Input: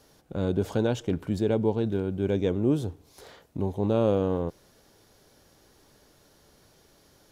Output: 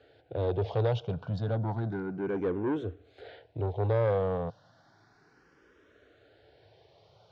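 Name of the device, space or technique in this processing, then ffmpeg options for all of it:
barber-pole phaser into a guitar amplifier: -filter_complex "[0:a]asplit=2[link_01][link_02];[link_02]afreqshift=0.32[link_03];[link_01][link_03]amix=inputs=2:normalize=1,asoftclip=type=tanh:threshold=-25dB,highpass=78,equalizer=frequency=110:width_type=q:width=4:gain=8,equalizer=frequency=220:width_type=q:width=4:gain=-8,equalizer=frequency=460:width_type=q:width=4:gain=4,equalizer=frequency=700:width_type=q:width=4:gain=7,equalizer=frequency=1500:width_type=q:width=4:gain=7,lowpass=frequency=4300:width=0.5412,lowpass=frequency=4300:width=1.3066"

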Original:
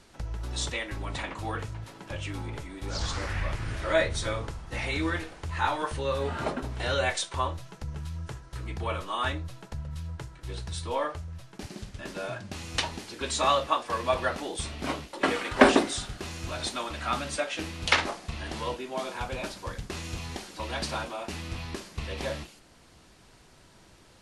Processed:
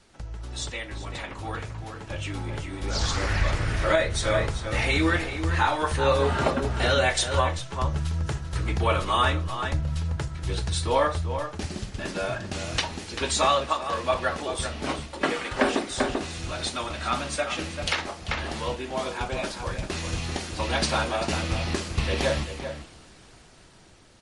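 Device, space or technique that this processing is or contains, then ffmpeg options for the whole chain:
low-bitrate web radio: -filter_complex "[0:a]bandreject=frequency=1000:width=26,adynamicequalizer=threshold=0.00316:dfrequency=300:dqfactor=6.6:tfrequency=300:tqfactor=6.6:attack=5:release=100:ratio=0.375:range=1.5:mode=cutabove:tftype=bell,asplit=2[link_01][link_02];[link_02]adelay=390.7,volume=-8dB,highshelf=frequency=4000:gain=-8.79[link_03];[link_01][link_03]amix=inputs=2:normalize=0,dynaudnorm=framelen=690:gausssize=7:maxgain=11.5dB,alimiter=limit=-9dB:level=0:latency=1:release=464,volume=-1.5dB" -ar 48000 -c:a libmp3lame -b:a 48k

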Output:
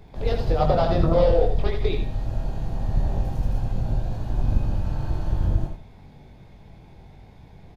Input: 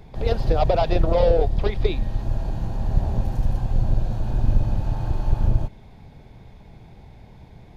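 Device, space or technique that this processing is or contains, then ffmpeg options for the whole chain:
slapback doubling: -filter_complex "[0:a]asettb=1/sr,asplit=3[link_01][link_02][link_03];[link_01]atrim=end=0.604[link_04];[link_02]atrim=start=0.6:end=1.2,asetpts=PTS-STARTPTS,afade=type=in:duration=0.004:curve=qsin,afade=type=out:start_time=0.596:duration=0.004:curve=qsin,equalizer=frequency=160:width_type=o:width=0.33:gain=11,equalizer=frequency=250:width_type=o:width=0.33:gain=10,equalizer=frequency=1250:width_type=o:width=0.33:gain=8,equalizer=frequency=2500:width_type=o:width=0.33:gain=-7[link_05];[link_03]atrim=start=1.196[link_06];[link_04][link_05]acrossfade=duration=0.004:curve1=hsin:curve2=qsin[link_07];[link_07][link_06]acrossfade=duration=0.004:curve1=qsin:curve2=hsin,asplit=3[link_08][link_09][link_10];[link_09]adelay=21,volume=-4dB[link_11];[link_10]adelay=80,volume=-7dB[link_12];[link_08][link_11][link_12]amix=inputs=3:normalize=0,aecho=1:1:92:0.282,volume=-3.5dB"

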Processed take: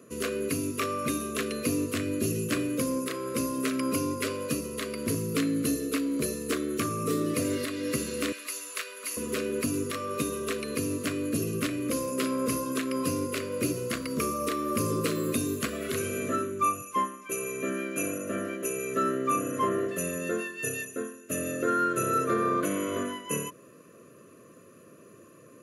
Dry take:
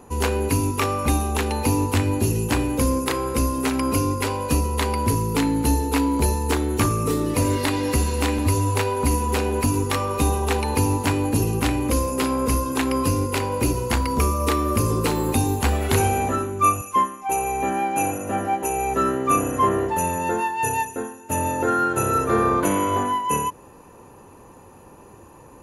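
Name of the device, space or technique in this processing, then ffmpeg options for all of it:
PA system with an anti-feedback notch: -filter_complex "[0:a]asettb=1/sr,asplit=3[link_01][link_02][link_03];[link_01]atrim=end=8.324[link_04];[link_02]atrim=start=8.32:end=9.17,asetpts=PTS-STARTPTS,afade=type=in:duration=0.004:curve=qsin,afade=type=out:start_time=0.846:duration=0.004:curve=qsin,highpass=1100[link_05];[link_03]atrim=start=9.166[link_06];[link_04][link_05]acrossfade=duration=0.004:curve1=hsin:curve2=qsin[link_07];[link_07][link_06]acrossfade=duration=0.004:curve1=qsin:curve2=hsin,highpass=frequency=130:width=0.5412,highpass=frequency=130:width=1.3066,asuperstop=centerf=850:order=12:qfactor=2.3,alimiter=limit=-12dB:level=0:latency=1:release=352,volume=-4.5dB"

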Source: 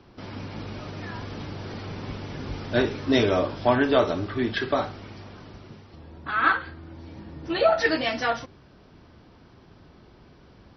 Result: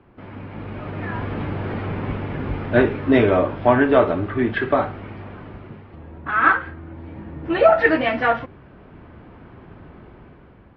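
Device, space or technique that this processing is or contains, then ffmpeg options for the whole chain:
action camera in a waterproof case: -af "lowpass=frequency=2500:width=0.5412,lowpass=frequency=2500:width=1.3066,dynaudnorm=framelen=250:gausssize=7:maxgain=9.5dB" -ar 32000 -c:a aac -b:a 64k

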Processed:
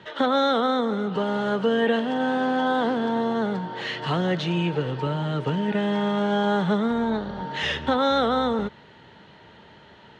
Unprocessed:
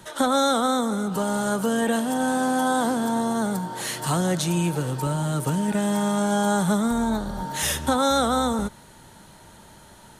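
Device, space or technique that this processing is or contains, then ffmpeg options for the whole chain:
guitar cabinet: -af "highpass=82,equalizer=frequency=440:width_type=q:width=4:gain=7,equalizer=frequency=1900:width_type=q:width=4:gain=6,equalizer=frequency=2900:width_type=q:width=4:gain=7,lowpass=frequency=4100:width=0.5412,lowpass=frequency=4100:width=1.3066,volume=-1.5dB"

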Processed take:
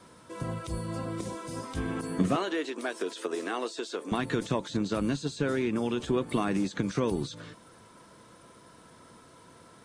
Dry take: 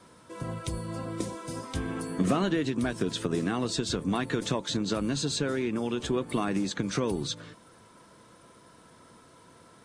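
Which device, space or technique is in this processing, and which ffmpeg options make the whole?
de-esser from a sidechain: -filter_complex "[0:a]asplit=2[link_01][link_02];[link_02]highpass=5800,apad=whole_len=434328[link_03];[link_01][link_03]sidechaincompress=threshold=-45dB:ratio=8:attack=0.84:release=31,asettb=1/sr,asplit=3[link_04][link_05][link_06];[link_04]atrim=end=2.364[link_07];[link_05]atrim=start=2.36:end=4.12,asetpts=PTS-STARTPTS,afade=type=in:duration=0.004:curve=qsin,afade=type=out:start_time=1.756:duration=0.004:curve=qsin,highpass=frequency=350:width=0.5412,highpass=frequency=350:width=1.3066[link_08];[link_06]atrim=start=4.116[link_09];[link_07][link_08]acrossfade=duration=0.004:curve1=hsin:curve2=qsin[link_10];[link_10][link_09]acrossfade=duration=0.004:curve1=qsin:curve2=hsin,volume=1dB"

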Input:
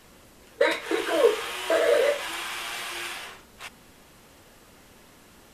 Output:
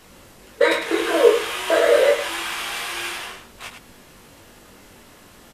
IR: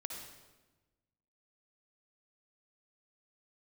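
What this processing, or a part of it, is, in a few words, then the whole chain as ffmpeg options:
slapback doubling: -filter_complex "[0:a]asplit=3[link_01][link_02][link_03];[link_02]adelay=21,volume=-4dB[link_04];[link_03]adelay=104,volume=-7dB[link_05];[link_01][link_04][link_05]amix=inputs=3:normalize=0,volume=3.5dB"

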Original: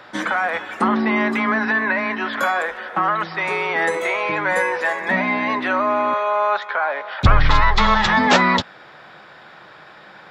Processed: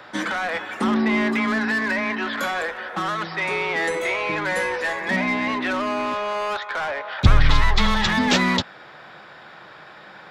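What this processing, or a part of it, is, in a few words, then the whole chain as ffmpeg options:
one-band saturation: -filter_complex "[0:a]acrossover=split=420|2100[link_01][link_02][link_03];[link_02]asoftclip=type=tanh:threshold=-26dB[link_04];[link_01][link_04][link_03]amix=inputs=3:normalize=0"

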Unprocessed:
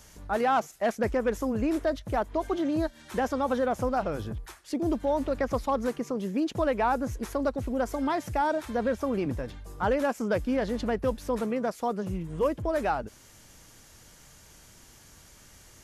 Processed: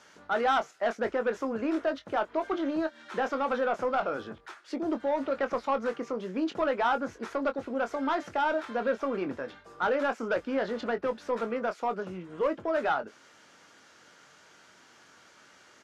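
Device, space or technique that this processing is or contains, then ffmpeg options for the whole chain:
intercom: -filter_complex "[0:a]highpass=300,lowpass=4300,equalizer=frequency=1400:width_type=o:width=0.41:gain=7.5,asoftclip=type=tanh:threshold=-19.5dB,asplit=2[link_01][link_02];[link_02]adelay=22,volume=-9dB[link_03];[link_01][link_03]amix=inputs=2:normalize=0"

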